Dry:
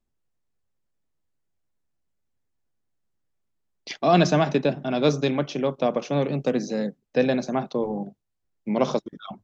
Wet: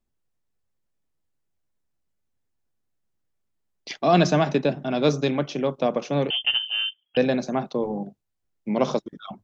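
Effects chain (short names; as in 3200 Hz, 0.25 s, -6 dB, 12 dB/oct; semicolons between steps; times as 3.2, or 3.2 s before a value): 6.3–7.17 inverted band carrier 3300 Hz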